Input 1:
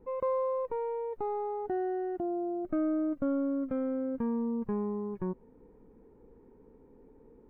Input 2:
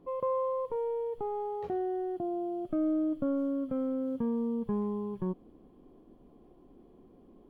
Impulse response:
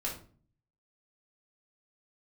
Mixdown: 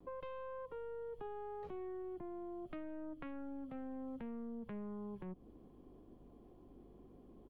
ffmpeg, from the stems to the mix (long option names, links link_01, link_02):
-filter_complex "[0:a]highpass=frequency=84:width=0.5412,highpass=frequency=84:width=1.3066,aeval=exprs='0.0944*(cos(1*acos(clip(val(0)/0.0944,-1,1)))-cos(1*PI/2))+0.0473*(cos(3*acos(clip(val(0)/0.0944,-1,1)))-cos(3*PI/2))+0.0188*(cos(4*acos(clip(val(0)/0.0944,-1,1)))-cos(4*PI/2))+0.0106*(cos(5*acos(clip(val(0)/0.0944,-1,1)))-cos(5*PI/2))':channel_layout=same,volume=-12dB[link_01];[1:a]acrossover=split=170[link_02][link_03];[link_03]acompressor=threshold=-40dB:ratio=3[link_04];[link_02][link_04]amix=inputs=2:normalize=0,alimiter=level_in=10.5dB:limit=-24dB:level=0:latency=1,volume=-10.5dB,aeval=exprs='val(0)+0.000794*(sin(2*PI*50*n/s)+sin(2*PI*2*50*n/s)/2+sin(2*PI*3*50*n/s)/3+sin(2*PI*4*50*n/s)/4+sin(2*PI*5*50*n/s)/5)':channel_layout=same,volume=-1,adelay=4.4,volume=-3dB[link_05];[link_01][link_05]amix=inputs=2:normalize=0,acompressor=threshold=-42dB:ratio=6"